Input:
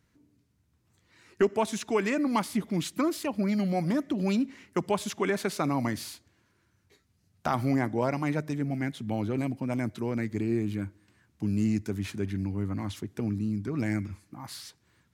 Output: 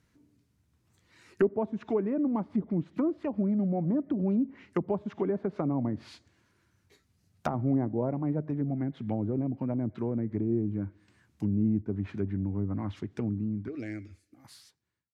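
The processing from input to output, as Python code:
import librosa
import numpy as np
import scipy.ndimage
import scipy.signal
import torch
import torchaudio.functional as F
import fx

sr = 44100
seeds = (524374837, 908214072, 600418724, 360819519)

y = fx.fade_out_tail(x, sr, length_s=2.08)
y = fx.fixed_phaser(y, sr, hz=400.0, stages=4, at=(13.68, 14.45))
y = fx.env_lowpass_down(y, sr, base_hz=570.0, full_db=-25.5)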